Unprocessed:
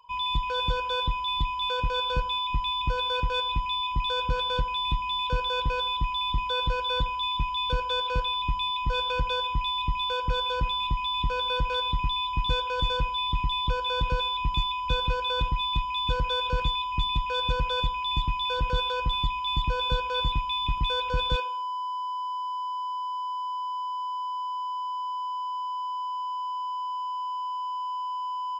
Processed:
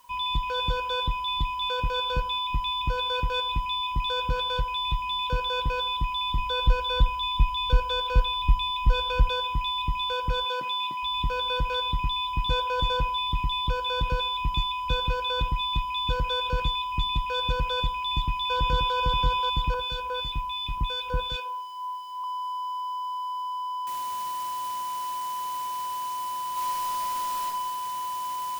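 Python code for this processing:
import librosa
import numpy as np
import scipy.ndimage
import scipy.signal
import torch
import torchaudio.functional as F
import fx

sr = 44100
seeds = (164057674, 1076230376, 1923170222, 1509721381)

y = fx.peak_eq(x, sr, hz=250.0, db=-13.5, octaves=0.63, at=(4.48, 5.03))
y = fx.low_shelf(y, sr, hz=79.0, db=11.5, at=(6.39, 9.29))
y = fx.bessel_highpass(y, sr, hz=330.0, order=4, at=(10.45, 11.03))
y = fx.peak_eq(y, sr, hz=740.0, db=8.5, octaves=0.57, at=(12.51, 13.18))
y = fx.echo_throw(y, sr, start_s=17.97, length_s=0.99, ms=530, feedback_pct=15, wet_db=-3.5)
y = fx.harmonic_tremolo(y, sr, hz=2.8, depth_pct=70, crossover_hz=1800.0, at=(19.74, 22.24))
y = fx.noise_floor_step(y, sr, seeds[0], at_s=23.87, before_db=-63, after_db=-44, tilt_db=0.0)
y = fx.reverb_throw(y, sr, start_s=26.52, length_s=0.93, rt60_s=0.83, drr_db=-4.5)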